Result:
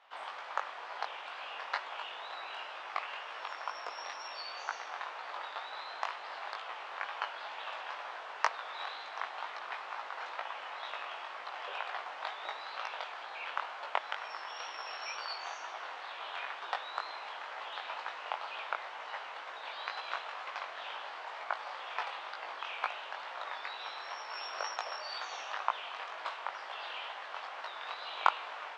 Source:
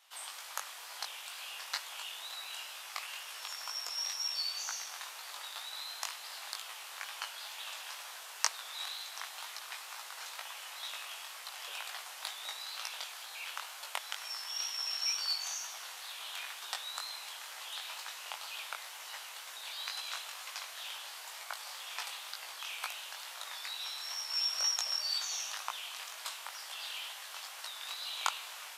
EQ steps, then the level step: tape spacing loss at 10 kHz 39 dB; high shelf 3000 Hz -8 dB; +13.5 dB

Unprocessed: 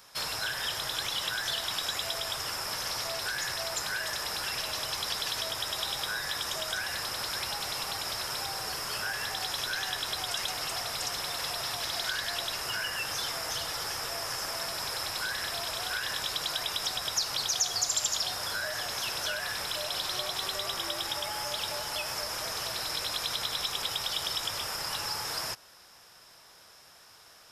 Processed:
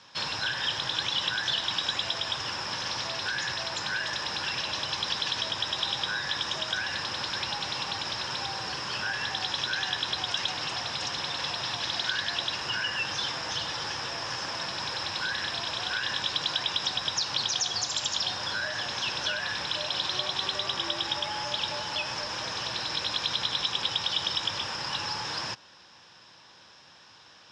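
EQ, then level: speaker cabinet 100–5100 Hz, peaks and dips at 430 Hz -7 dB, 670 Hz -9 dB, 1300 Hz -7 dB, 2100 Hz -6 dB, 4600 Hz -5 dB; +6.5 dB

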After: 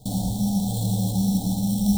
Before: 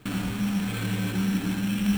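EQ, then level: Chebyshev band-stop 810–3600 Hz, order 4; fixed phaser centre 840 Hz, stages 4; +8.5 dB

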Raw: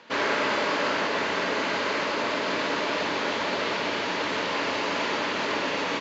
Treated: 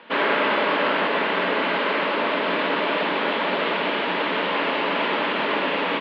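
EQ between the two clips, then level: elliptic band-pass 170–3300 Hz, stop band 40 dB; +5.0 dB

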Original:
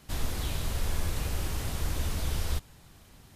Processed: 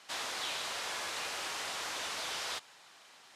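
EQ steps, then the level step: BPF 790–6700 Hz; +4.5 dB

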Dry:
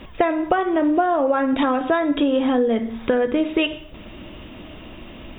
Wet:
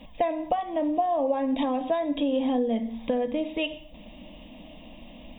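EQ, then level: fixed phaser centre 380 Hz, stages 6; -4.5 dB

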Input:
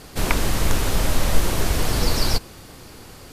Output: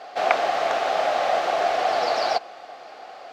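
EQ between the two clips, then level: resonant high-pass 710 Hz, resonance Q 5.9; air absorption 200 m; notch 950 Hz, Q 5.2; +2.0 dB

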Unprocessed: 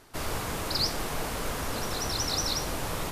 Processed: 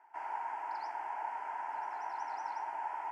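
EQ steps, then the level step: ladder band-pass 980 Hz, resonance 80%; fixed phaser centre 770 Hz, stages 8; +5.5 dB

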